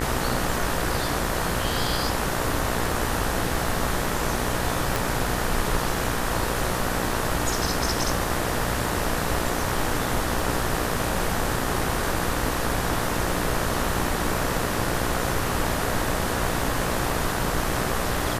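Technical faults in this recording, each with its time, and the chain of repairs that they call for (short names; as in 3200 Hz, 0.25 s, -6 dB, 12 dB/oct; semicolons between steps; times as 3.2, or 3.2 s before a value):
buzz 60 Hz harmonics 32 -30 dBFS
4.96 pop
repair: de-click; de-hum 60 Hz, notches 32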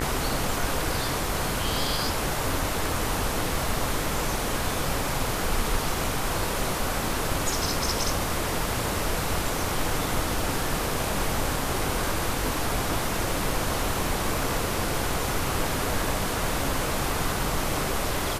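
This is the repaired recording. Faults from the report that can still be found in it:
4.96 pop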